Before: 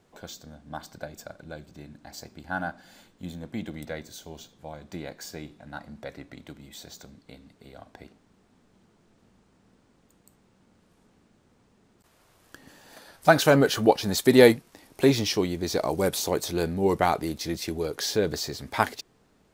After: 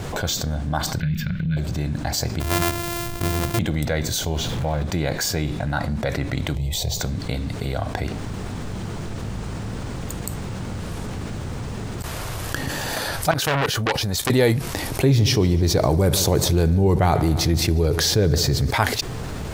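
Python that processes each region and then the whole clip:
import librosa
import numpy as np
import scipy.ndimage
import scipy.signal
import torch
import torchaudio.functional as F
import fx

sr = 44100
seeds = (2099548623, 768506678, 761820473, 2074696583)

y = fx.chain(x, sr, fx.curve_eq(hz=(120.0, 170.0, 280.0, 440.0, 760.0, 1800.0, 2900.0, 5400.0, 8400.0, 15000.0), db=(0, 15, -5, -19, -28, 2, 4, -12, -23, -8)),
    fx.transient(attack_db=-8, sustain_db=-1), at=(1.0, 1.57))
y = fx.chain(y, sr, fx.sample_sort(block=128),
    fx.high_shelf(hz=9600.0, db=10.5), at=(2.4, 3.59))
y = fx.chain(y, sr, fx.zero_step(step_db=-45.0),
    fx.high_shelf(hz=5300.0, db=-11.5), at=(4.36, 4.83))
y = fx.chain(y, sr, fx.bass_treble(bass_db=7, treble_db=-3),
    fx.fixed_phaser(hz=600.0, stages=4), at=(6.55, 7.0))
y = fx.chain(y, sr, fx.level_steps(step_db=21),
    fx.transformer_sat(knee_hz=3100.0), at=(13.31, 14.3))
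y = fx.chain(y, sr, fx.low_shelf(hz=430.0, db=8.5),
    fx.echo_heads(ms=73, heads='first and second', feedback_pct=55, wet_db=-21.5), at=(15.01, 18.71))
y = fx.low_shelf_res(y, sr, hz=160.0, db=7.5, q=1.5)
y = fx.env_flatten(y, sr, amount_pct=70)
y = y * librosa.db_to_amplitude(-5.0)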